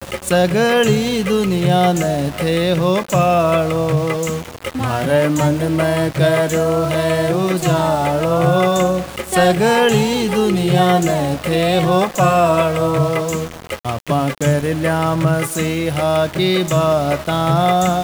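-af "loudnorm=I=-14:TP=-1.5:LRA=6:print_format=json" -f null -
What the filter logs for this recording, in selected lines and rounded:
"input_i" : "-16.4",
"input_tp" : "-2.5",
"input_lra" : "2.0",
"input_thresh" : "-26.4",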